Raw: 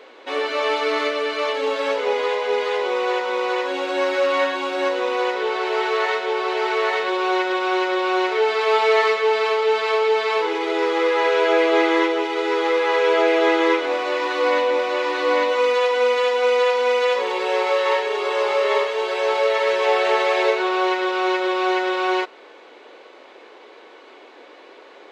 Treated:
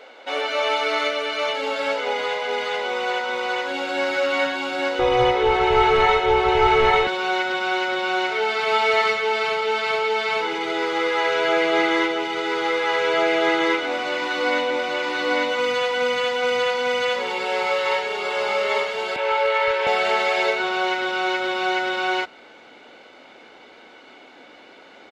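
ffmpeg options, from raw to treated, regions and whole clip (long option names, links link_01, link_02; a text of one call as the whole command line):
ffmpeg -i in.wav -filter_complex "[0:a]asettb=1/sr,asplit=3[link_01][link_02][link_03];[link_01]atrim=end=4.994[link_04];[link_02]atrim=start=4.99:end=7.07,asetpts=PTS-STARTPTS,afade=type=in:duration=0.004:curve=qsin,afade=type=out:start_time=2.076:duration=0.004:curve=qsin,highshelf=frequency=2400:gain=-10,aecho=1:1:2.4:0.84,atrim=end_sample=91728,acontrast=52[link_05];[link_03]atrim=start=7.066[link_06];[link_04][link_05]acrossfade=duration=0.004:curve1=hsin:curve2=qsin[link_07];[link_07][link_06]acrossfade=duration=0.004:curve1=qsin:curve2=hsin,asettb=1/sr,asplit=3[link_08][link_09][link_10];[link_08]atrim=end=19.164[link_11];[link_09]atrim=start=19.16:end=19.87,asetpts=PTS-STARTPTS,afade=type=in:duration=0.004:curve=qsin,afade=type=out:start_time=0.706:duration=0.004:curve=qsin,acrossover=split=460 3400:gain=0.251 1 0.251[link_12][link_13][link_14];[link_12][link_13][link_14]amix=inputs=3:normalize=0,asoftclip=type=hard:threshold=-12dB,asplit=2[link_15][link_16];[link_16]adelay=25,volume=-2.5dB[link_17];[link_15][link_17]amix=inputs=2:normalize=0,atrim=end_sample=31311[link_18];[link_10]atrim=start=19.866[link_19];[link_11][link_18]acrossfade=duration=0.004:curve1=hsin:curve2=qsin[link_20];[link_20][link_19]acrossfade=duration=0.004:curve1=qsin:curve2=hsin,aecho=1:1:1.4:0.52,asubboost=boost=9.5:cutoff=170" out.wav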